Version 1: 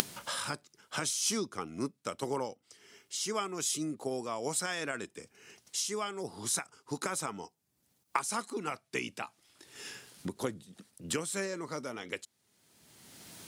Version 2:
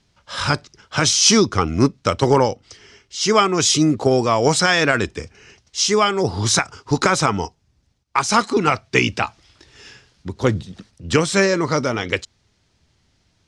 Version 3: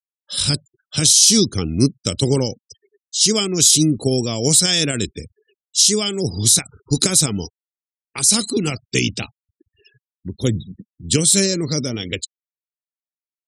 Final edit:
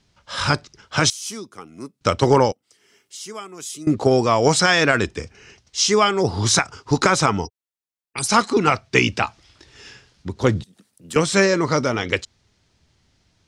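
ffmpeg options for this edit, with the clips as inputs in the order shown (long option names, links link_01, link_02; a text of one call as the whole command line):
ffmpeg -i take0.wav -i take1.wav -i take2.wav -filter_complex "[0:a]asplit=3[link_01][link_02][link_03];[1:a]asplit=5[link_04][link_05][link_06][link_07][link_08];[link_04]atrim=end=1.102[link_09];[link_01]atrim=start=1.098:end=2.012[link_10];[link_05]atrim=start=2.008:end=2.522[link_11];[link_02]atrim=start=2.518:end=3.872[link_12];[link_06]atrim=start=3.868:end=7.48[link_13];[2:a]atrim=start=7.38:end=8.3[link_14];[link_07]atrim=start=8.2:end=10.642[link_15];[link_03]atrim=start=10.638:end=11.162[link_16];[link_08]atrim=start=11.158[link_17];[link_09][link_10]acrossfade=duration=0.004:curve1=hsin:curve2=hsin[link_18];[link_18][link_11]acrossfade=duration=0.004:curve1=hsin:curve2=hsin[link_19];[link_19][link_12]acrossfade=duration=0.004:curve1=hsin:curve2=hsin[link_20];[link_20][link_13]acrossfade=duration=0.004:curve1=hsin:curve2=hsin[link_21];[link_21][link_14]acrossfade=duration=0.1:curve1=tri:curve2=tri[link_22];[link_22][link_15]acrossfade=duration=0.1:curve1=tri:curve2=tri[link_23];[link_23][link_16]acrossfade=duration=0.004:curve1=hsin:curve2=hsin[link_24];[link_24][link_17]acrossfade=duration=0.004:curve1=hsin:curve2=hsin" out.wav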